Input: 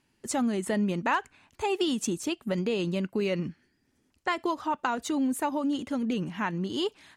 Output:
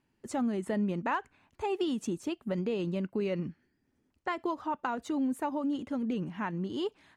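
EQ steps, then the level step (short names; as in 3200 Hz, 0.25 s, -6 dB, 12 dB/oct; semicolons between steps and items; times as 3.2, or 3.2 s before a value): high shelf 2500 Hz -10.5 dB; -3.0 dB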